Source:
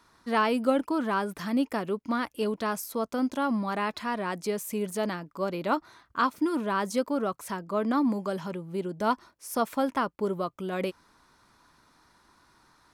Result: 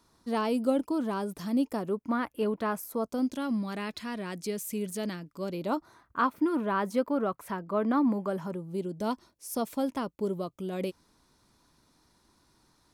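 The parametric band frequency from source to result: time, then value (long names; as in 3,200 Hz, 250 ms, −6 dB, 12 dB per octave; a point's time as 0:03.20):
parametric band −11 dB 1.9 octaves
0:01.68 1,700 Hz
0:02.22 5,800 Hz
0:02.77 5,800 Hz
0:03.36 960 Hz
0:05.41 960 Hz
0:06.30 6,600 Hz
0:08.19 6,600 Hz
0:08.81 1,400 Hz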